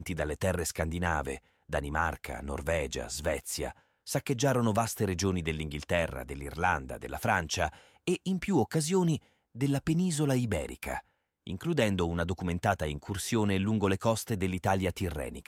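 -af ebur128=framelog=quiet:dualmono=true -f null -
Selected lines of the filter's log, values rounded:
Integrated loudness:
  I:         -28.2 LUFS
  Threshold: -38.4 LUFS
Loudness range:
  LRA:         2.7 LU
  Threshold: -48.4 LUFS
  LRA low:   -30.0 LUFS
  LRA high:  -27.3 LUFS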